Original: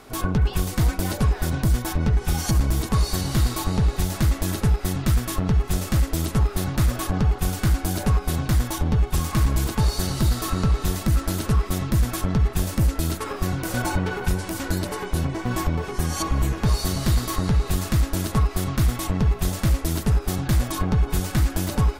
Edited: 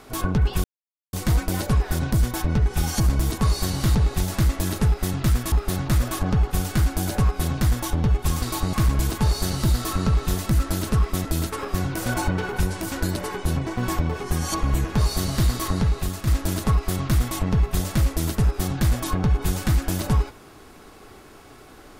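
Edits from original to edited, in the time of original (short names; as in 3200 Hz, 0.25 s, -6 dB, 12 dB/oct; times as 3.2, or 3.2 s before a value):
0.64 insert silence 0.49 s
3.46–3.77 move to 9.3
5.34–6.4 cut
11.82–12.93 cut
17.45–17.95 fade out, to -6.5 dB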